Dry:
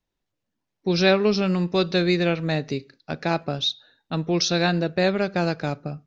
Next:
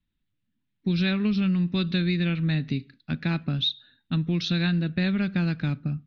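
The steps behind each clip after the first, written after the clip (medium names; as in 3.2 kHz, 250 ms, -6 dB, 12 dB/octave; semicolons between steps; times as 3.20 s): FFT filter 250 Hz 0 dB, 430 Hz -18 dB, 710 Hz -20 dB, 1.6 kHz -7 dB, 3.7 kHz -4 dB, 5.5 kHz -21 dB; compression, threshold -26 dBFS, peak gain reduction 6 dB; trim +5 dB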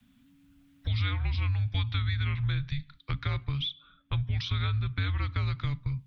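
frequency shift -280 Hz; three bands compressed up and down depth 70%; trim -4.5 dB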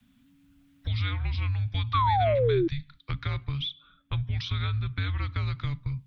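painted sound fall, 1.93–2.68 s, 320–1200 Hz -24 dBFS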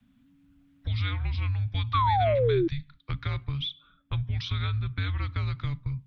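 tape noise reduction on one side only decoder only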